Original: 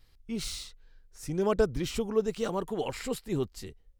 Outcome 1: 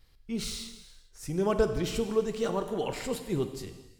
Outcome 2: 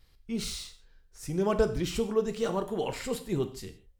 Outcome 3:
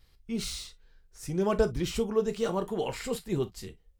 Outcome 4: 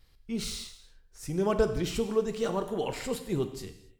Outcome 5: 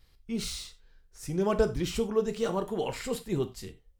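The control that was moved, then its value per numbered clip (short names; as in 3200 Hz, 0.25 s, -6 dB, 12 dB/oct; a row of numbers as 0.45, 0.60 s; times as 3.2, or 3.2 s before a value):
non-linear reverb, gate: 480, 180, 80, 310, 120 ms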